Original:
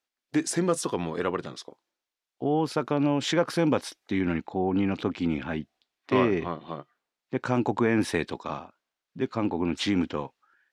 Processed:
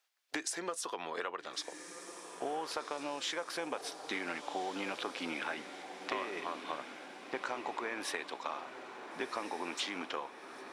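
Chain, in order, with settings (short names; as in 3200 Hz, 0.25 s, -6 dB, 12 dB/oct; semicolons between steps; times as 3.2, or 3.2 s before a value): HPF 680 Hz 12 dB/oct; compressor 12:1, threshold -41 dBFS, peak gain reduction 18.5 dB; on a send: diffused feedback echo 1.442 s, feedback 57%, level -9 dB; on the sum: gain +6.5 dB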